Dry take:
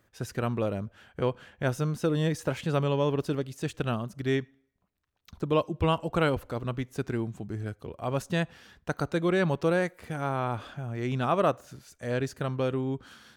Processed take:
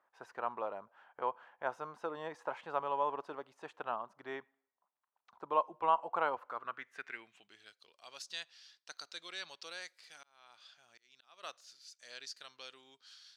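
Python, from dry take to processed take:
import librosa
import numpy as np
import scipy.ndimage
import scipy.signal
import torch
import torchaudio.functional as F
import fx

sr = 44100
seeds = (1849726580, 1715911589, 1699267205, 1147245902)

y = fx.filter_sweep_bandpass(x, sr, from_hz=930.0, to_hz=4700.0, start_s=6.33, end_s=7.89, q=3.2)
y = fx.auto_swell(y, sr, attack_ms=709.0, at=(9.6, 11.43))
y = fx.highpass(y, sr, hz=510.0, slope=6)
y = y * 10.0 ** (4.5 / 20.0)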